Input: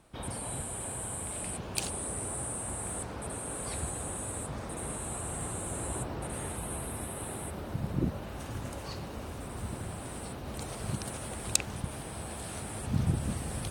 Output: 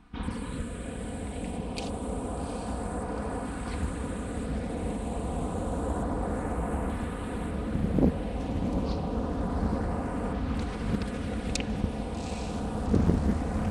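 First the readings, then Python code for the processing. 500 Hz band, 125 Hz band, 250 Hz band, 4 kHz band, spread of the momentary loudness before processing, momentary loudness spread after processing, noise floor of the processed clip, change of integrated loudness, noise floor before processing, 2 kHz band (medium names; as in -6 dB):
+7.0 dB, +4.5 dB, +9.5 dB, -1.5 dB, 9 LU, 8 LU, -36 dBFS, +4.0 dB, -41 dBFS, +2.0 dB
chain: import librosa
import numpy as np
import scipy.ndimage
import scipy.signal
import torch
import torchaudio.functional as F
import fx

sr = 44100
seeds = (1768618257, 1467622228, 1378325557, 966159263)

p1 = x + 0.66 * np.pad(x, (int(4.1 * sr / 1000.0), 0))[:len(x)]
p2 = fx.rider(p1, sr, range_db=10, speed_s=2.0)
p3 = p1 + (p2 * librosa.db_to_amplitude(1.5))
p4 = fx.filter_lfo_notch(p3, sr, shape='saw_up', hz=0.29, low_hz=530.0, high_hz=4300.0, q=0.87)
p5 = fx.spacing_loss(p4, sr, db_at_10k=24)
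p6 = fx.echo_diffused(p5, sr, ms=803, feedback_pct=57, wet_db=-7.5)
y = fx.doppler_dist(p6, sr, depth_ms=0.98)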